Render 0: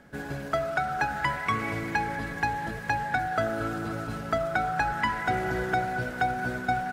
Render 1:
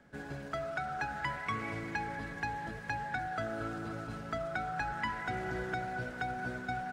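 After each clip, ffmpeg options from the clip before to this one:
ffmpeg -i in.wav -filter_complex "[0:a]equalizer=frequency=13000:width=1.4:gain=-11,acrossover=split=340|1200|5700[link_01][link_02][link_03][link_04];[link_02]alimiter=level_in=3dB:limit=-24dB:level=0:latency=1,volume=-3dB[link_05];[link_01][link_05][link_03][link_04]amix=inputs=4:normalize=0,volume=-7.5dB" out.wav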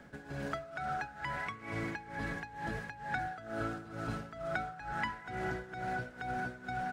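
ffmpeg -i in.wav -af "acompressor=threshold=-40dB:ratio=4,tremolo=f=2.2:d=0.82,volume=7.5dB" out.wav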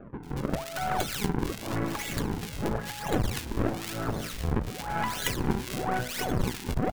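ffmpeg -i in.wav -filter_complex "[0:a]acrusher=samples=42:mix=1:aa=0.000001:lfo=1:lforange=67.2:lforate=0.95,acrossover=split=1700[link_01][link_02];[link_02]adelay=230[link_03];[link_01][link_03]amix=inputs=2:normalize=0,aeval=exprs='0.106*(cos(1*acos(clip(val(0)/0.106,-1,1)))-cos(1*PI/2))+0.0335*(cos(4*acos(clip(val(0)/0.106,-1,1)))-cos(4*PI/2))':channel_layout=same,volume=8.5dB" out.wav

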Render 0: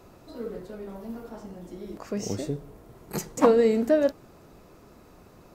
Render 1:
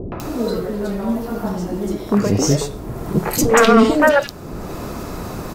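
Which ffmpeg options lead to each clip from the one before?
ffmpeg -i in.wav -filter_complex "[0:a]acompressor=mode=upward:threshold=-34dB:ratio=2.5,aeval=exprs='0.501*sin(PI/2*4.47*val(0)/0.501)':channel_layout=same,acrossover=split=470|2500[link_01][link_02][link_03];[link_02]adelay=120[link_04];[link_03]adelay=200[link_05];[link_01][link_04][link_05]amix=inputs=3:normalize=0" out.wav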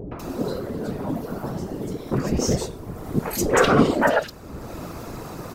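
ffmpeg -i in.wav -af "afftfilt=real='hypot(re,im)*cos(2*PI*random(0))':imag='hypot(re,im)*sin(2*PI*random(1))':win_size=512:overlap=0.75" out.wav

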